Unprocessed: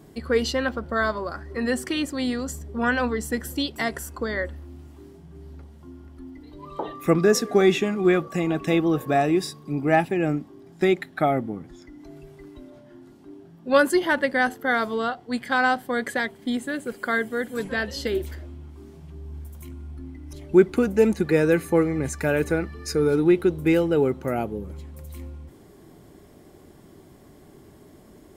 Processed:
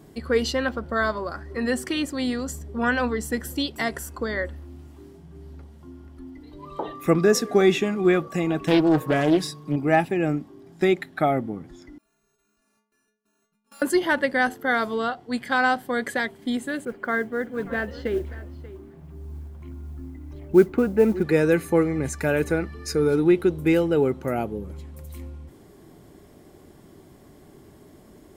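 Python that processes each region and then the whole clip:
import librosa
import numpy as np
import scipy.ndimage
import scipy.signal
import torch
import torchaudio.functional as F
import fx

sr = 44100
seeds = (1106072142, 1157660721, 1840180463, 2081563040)

y = fx.chain(x, sr, fx.comb(ms=6.5, depth=0.62),
    fx.doppler_dist(depth_ms=0.35), at=(8.67, 9.76))
y = fx.chain(y, sr, fx.sample_sort(block=32),
    fx.level_steps(step_db=24),
    fx.stiff_resonator(f0_hz=210.0, decay_s=0.65, stiffness=0.008), at=(11.98, 13.82))
y = fx.chain(y, sr, fx.lowpass(hz=2000.0, slope=12),
    fx.mod_noise(seeds[0], snr_db=33),
    fx.echo_single(ms=586, db=-18.0), at=(16.85, 21.23))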